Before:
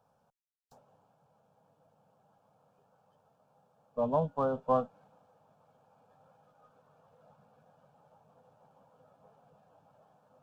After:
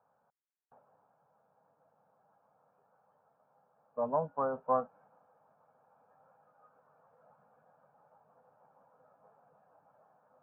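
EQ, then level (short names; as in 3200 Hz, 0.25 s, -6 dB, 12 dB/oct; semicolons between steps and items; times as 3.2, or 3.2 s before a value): LPF 1800 Hz 24 dB/oct; air absorption 440 m; tilt +4 dB/oct; +2.0 dB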